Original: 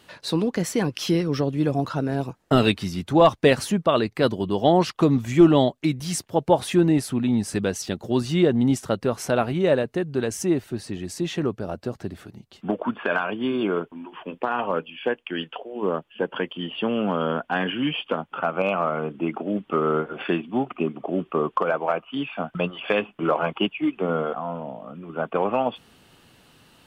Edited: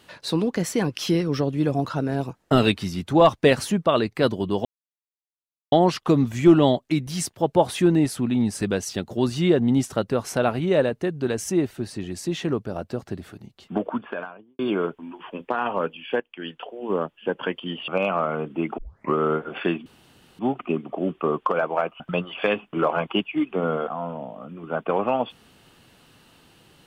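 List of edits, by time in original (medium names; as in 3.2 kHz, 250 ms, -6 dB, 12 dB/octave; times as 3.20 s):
4.65 s: insert silence 1.07 s
12.67–13.52 s: studio fade out
15.13–15.70 s: fade in linear, from -13.5 dB
16.81–18.52 s: delete
19.42 s: tape start 0.36 s
20.50 s: insert room tone 0.53 s
22.11–22.46 s: delete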